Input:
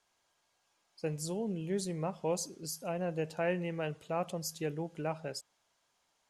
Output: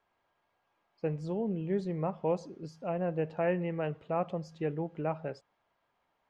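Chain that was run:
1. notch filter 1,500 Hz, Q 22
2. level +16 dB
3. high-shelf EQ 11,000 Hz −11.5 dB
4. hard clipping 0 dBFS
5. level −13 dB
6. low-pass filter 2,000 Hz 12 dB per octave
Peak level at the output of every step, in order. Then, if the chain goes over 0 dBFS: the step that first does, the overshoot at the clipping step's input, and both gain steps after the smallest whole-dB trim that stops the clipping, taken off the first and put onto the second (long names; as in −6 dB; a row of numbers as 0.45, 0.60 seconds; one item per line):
−20.0, −4.0, −4.0, −4.0, −17.0, −18.0 dBFS
no step passes full scale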